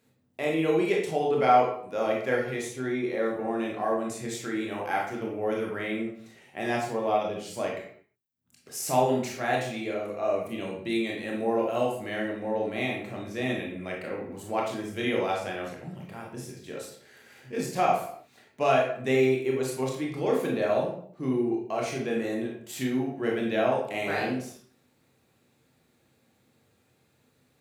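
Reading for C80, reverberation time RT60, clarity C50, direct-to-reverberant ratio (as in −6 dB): 7.5 dB, 0.60 s, 3.5 dB, −2.0 dB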